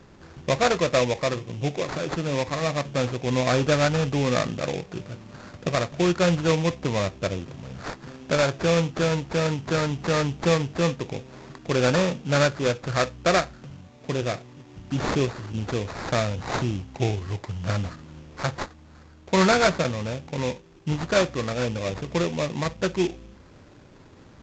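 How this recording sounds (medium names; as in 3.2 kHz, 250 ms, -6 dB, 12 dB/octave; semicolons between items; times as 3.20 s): aliases and images of a low sample rate 3 kHz, jitter 20%; A-law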